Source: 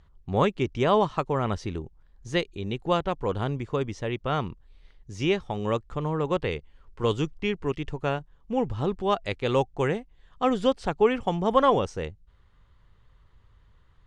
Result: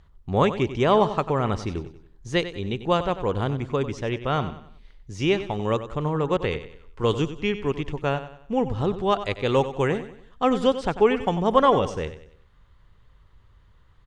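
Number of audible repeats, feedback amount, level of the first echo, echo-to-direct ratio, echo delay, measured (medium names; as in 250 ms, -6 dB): 3, 39%, -12.5 dB, -12.0 dB, 94 ms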